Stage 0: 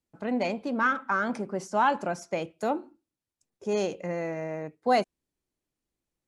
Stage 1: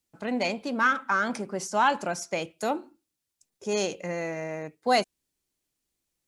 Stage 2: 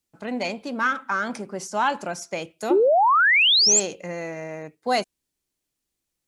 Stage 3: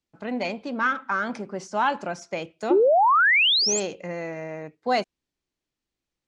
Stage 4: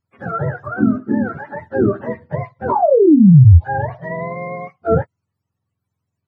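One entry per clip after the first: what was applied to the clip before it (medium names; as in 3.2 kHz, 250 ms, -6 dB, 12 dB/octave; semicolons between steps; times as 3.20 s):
treble shelf 2.2 kHz +11 dB; trim -1 dB
painted sound rise, 2.70–3.80 s, 330–7800 Hz -17 dBFS
distance through air 110 m
spectrum inverted on a logarithmic axis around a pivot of 580 Hz; trim +8 dB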